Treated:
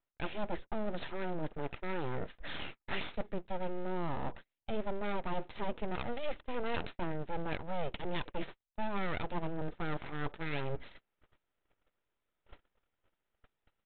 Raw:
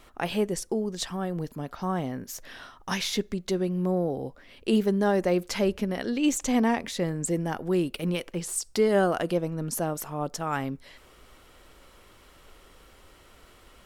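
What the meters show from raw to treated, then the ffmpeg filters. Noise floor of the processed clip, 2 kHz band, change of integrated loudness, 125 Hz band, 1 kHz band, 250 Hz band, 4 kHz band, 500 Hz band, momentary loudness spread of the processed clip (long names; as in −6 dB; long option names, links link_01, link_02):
below −85 dBFS, −6.5 dB, −12.0 dB, −10.5 dB, −7.0 dB, −14.5 dB, −11.5 dB, −12.0 dB, 5 LU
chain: -af "crystalizer=i=3.5:c=0,lowpass=1800,aresample=8000,aeval=exprs='abs(val(0))':channel_layout=same,aresample=44100,equalizer=frequency=77:width=1.5:gain=-2.5,areverse,acompressor=threshold=-39dB:ratio=5,areverse,bandreject=frequency=1100:width=12,agate=range=-37dB:threshold=-48dB:ratio=16:detection=peak,volume=7dB"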